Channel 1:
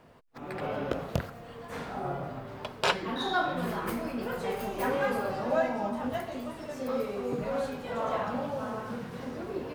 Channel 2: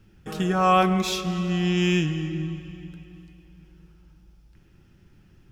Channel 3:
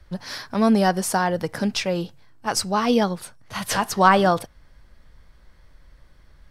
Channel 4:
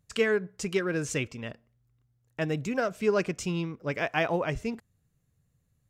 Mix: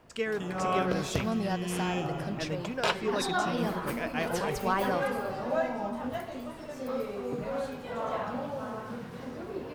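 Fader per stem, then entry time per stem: -2.0 dB, -11.5 dB, -14.0 dB, -6.5 dB; 0.00 s, 0.00 s, 0.65 s, 0.00 s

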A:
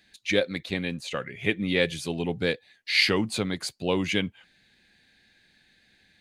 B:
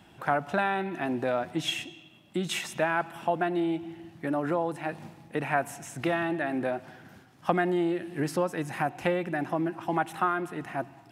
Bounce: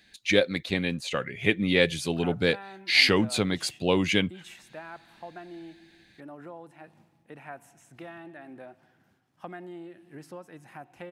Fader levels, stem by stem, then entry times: +2.0 dB, -15.5 dB; 0.00 s, 1.95 s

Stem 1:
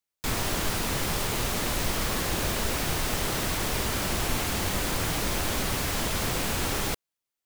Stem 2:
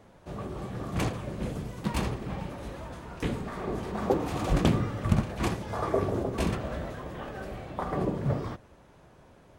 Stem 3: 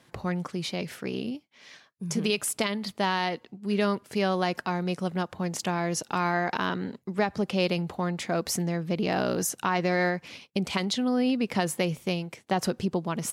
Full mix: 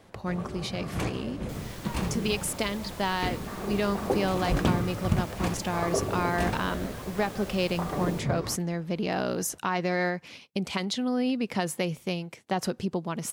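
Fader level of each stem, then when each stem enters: -16.5 dB, -1.5 dB, -2.0 dB; 1.25 s, 0.00 s, 0.00 s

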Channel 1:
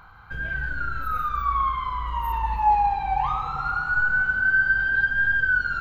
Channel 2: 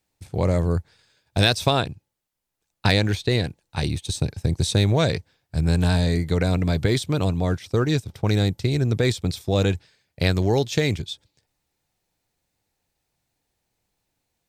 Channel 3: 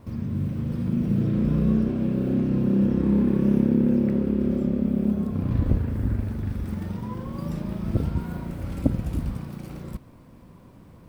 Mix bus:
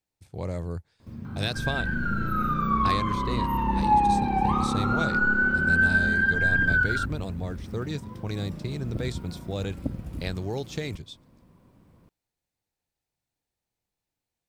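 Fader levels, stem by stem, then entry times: -1.5 dB, -11.0 dB, -8.5 dB; 1.25 s, 0.00 s, 1.00 s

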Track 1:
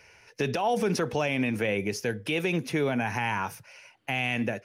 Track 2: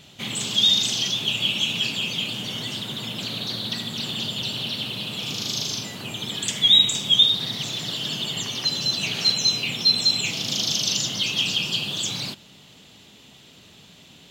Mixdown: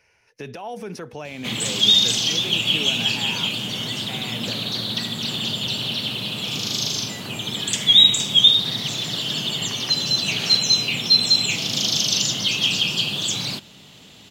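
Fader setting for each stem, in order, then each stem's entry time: -7.0 dB, +3.0 dB; 0.00 s, 1.25 s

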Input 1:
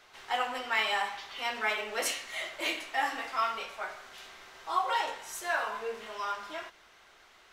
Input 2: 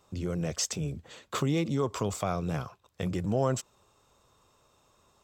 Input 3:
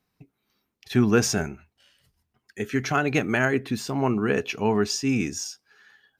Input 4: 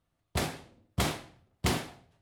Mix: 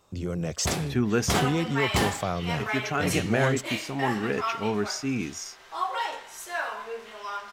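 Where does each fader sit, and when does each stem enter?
0.0 dB, +1.5 dB, -5.0 dB, +2.5 dB; 1.05 s, 0.00 s, 0.00 s, 0.30 s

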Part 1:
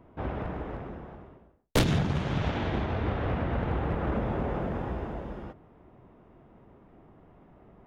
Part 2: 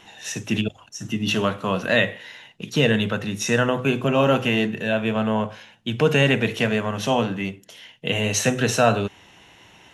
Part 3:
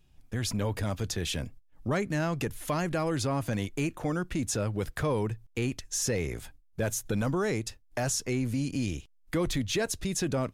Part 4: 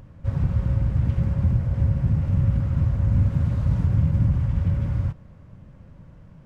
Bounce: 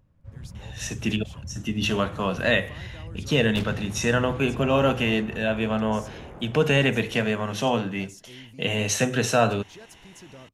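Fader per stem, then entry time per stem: -11.5 dB, -2.5 dB, -17.5 dB, -18.0 dB; 1.80 s, 0.55 s, 0.00 s, 0.00 s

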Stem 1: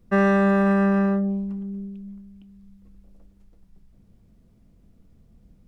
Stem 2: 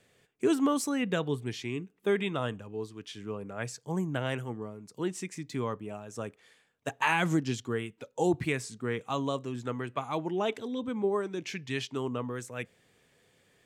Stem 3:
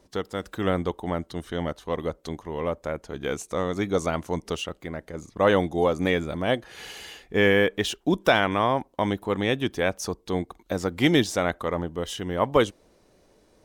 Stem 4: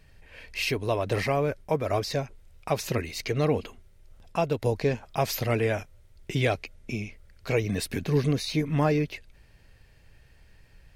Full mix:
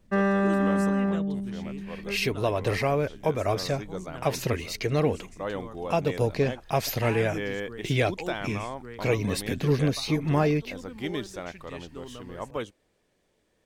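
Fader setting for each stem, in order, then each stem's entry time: -5.0 dB, -10.0 dB, -13.0 dB, +0.5 dB; 0.00 s, 0.00 s, 0.00 s, 1.55 s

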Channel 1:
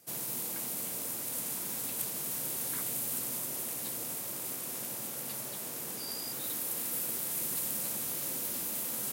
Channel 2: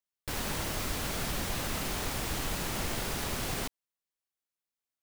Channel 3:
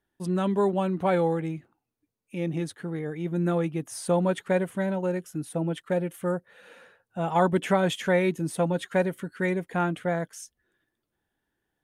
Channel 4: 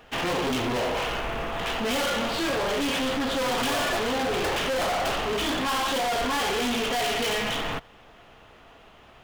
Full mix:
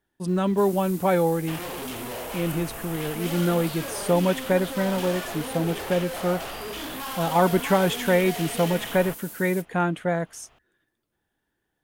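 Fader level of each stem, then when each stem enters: -6.0 dB, -19.5 dB, +2.5 dB, -8.0 dB; 0.50 s, 0.00 s, 0.00 s, 1.35 s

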